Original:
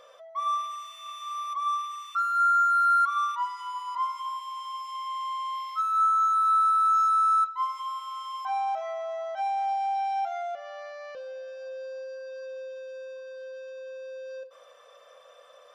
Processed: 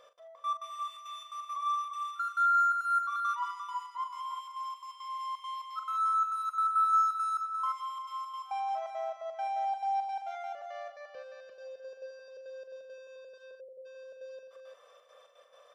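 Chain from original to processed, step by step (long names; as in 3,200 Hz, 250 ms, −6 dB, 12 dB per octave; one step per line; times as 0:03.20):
gate pattern "x.xx.x.xxx" 171 BPM −24 dB
on a send: multi-tap delay 41/187/349 ms −8.5/−13/−6 dB
on the sum: time-frequency box erased 0:13.60–0:13.86, 630–8,200 Hz
level −6 dB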